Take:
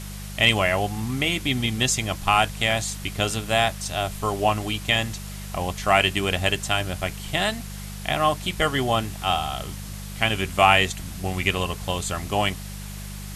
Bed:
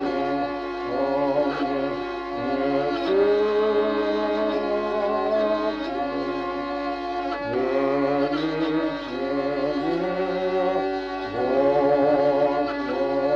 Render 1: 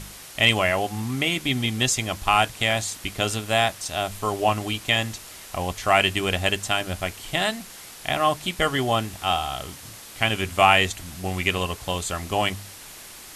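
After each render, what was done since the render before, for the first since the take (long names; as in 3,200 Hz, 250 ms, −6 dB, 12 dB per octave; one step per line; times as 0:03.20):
hum removal 50 Hz, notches 4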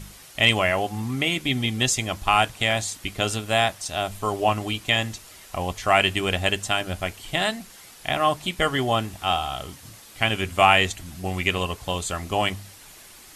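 broadband denoise 6 dB, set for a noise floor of −43 dBFS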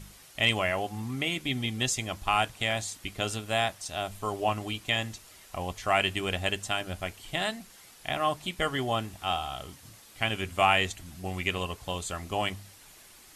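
level −6.5 dB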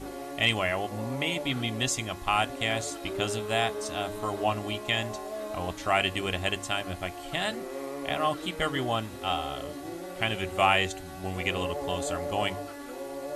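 mix in bed −14.5 dB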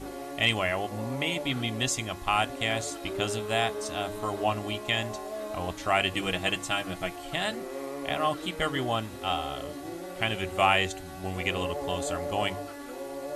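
0:06.13–0:07.16: comb filter 6.2 ms, depth 64%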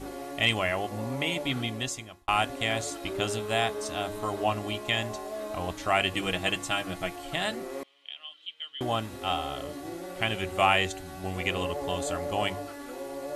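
0:01.58–0:02.28: fade out
0:07.83–0:08.81: resonant band-pass 3,100 Hz, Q 10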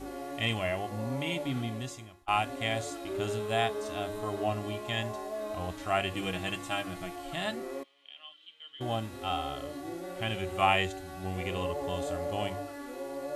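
harmonic and percussive parts rebalanced percussive −13 dB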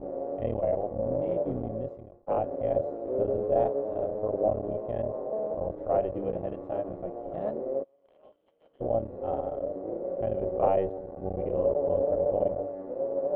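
sub-harmonics by changed cycles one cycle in 3, muted
low-pass with resonance 550 Hz, resonance Q 4.9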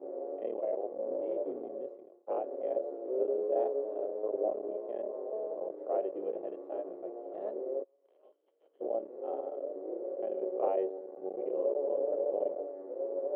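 four-pole ladder high-pass 330 Hz, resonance 55%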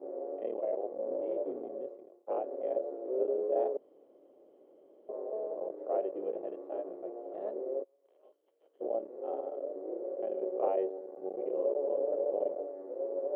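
0:03.77–0:05.09: fill with room tone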